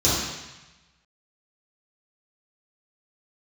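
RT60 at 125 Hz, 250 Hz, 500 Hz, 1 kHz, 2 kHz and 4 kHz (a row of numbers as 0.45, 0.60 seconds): 1.3, 1.0, 0.95, 1.2, 1.2, 1.1 seconds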